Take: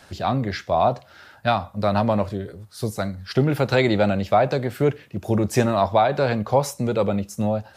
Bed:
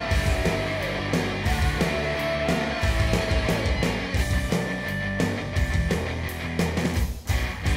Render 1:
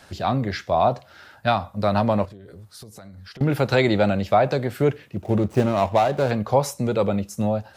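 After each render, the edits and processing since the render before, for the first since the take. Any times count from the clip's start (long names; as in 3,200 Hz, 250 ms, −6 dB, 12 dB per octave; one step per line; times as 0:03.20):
0:02.25–0:03.41: downward compressor 16 to 1, threshold −38 dBFS
0:05.22–0:06.31: running median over 25 samples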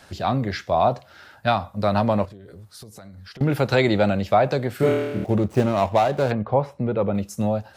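0:04.77–0:05.25: flutter between parallel walls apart 4.4 metres, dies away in 1.1 s
0:06.32–0:07.15: high-frequency loss of the air 470 metres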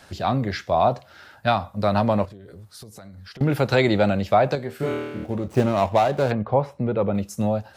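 0:04.55–0:05.47: tuned comb filter 78 Hz, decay 0.25 s, mix 70%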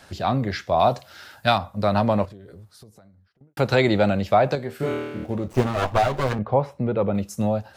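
0:00.79–0:01.58: high-shelf EQ 3,200 Hz +10.5 dB
0:02.28–0:03.57: fade out and dull
0:05.53–0:06.39: lower of the sound and its delayed copy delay 7.9 ms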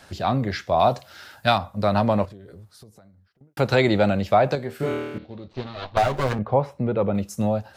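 0:05.18–0:05.97: transistor ladder low-pass 4,400 Hz, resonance 70%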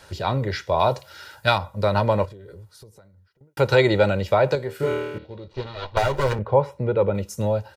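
comb filter 2.1 ms, depth 58%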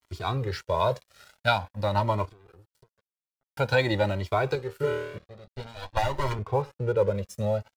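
dead-zone distortion −42.5 dBFS
flanger whose copies keep moving one way rising 0.48 Hz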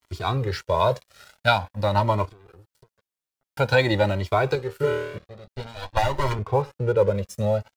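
level +4 dB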